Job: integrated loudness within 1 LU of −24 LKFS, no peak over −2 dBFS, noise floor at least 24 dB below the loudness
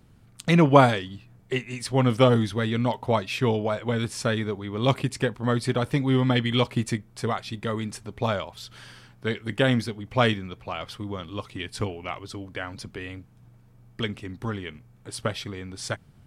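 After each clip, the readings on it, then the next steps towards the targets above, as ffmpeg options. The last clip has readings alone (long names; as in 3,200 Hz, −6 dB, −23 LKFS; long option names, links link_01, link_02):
integrated loudness −26.0 LKFS; sample peak −2.5 dBFS; target loudness −24.0 LKFS
→ -af "volume=2dB,alimiter=limit=-2dB:level=0:latency=1"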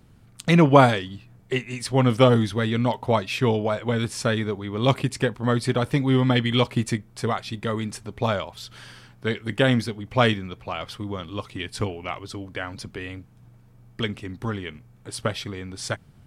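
integrated loudness −24.0 LKFS; sample peak −2.0 dBFS; background noise floor −53 dBFS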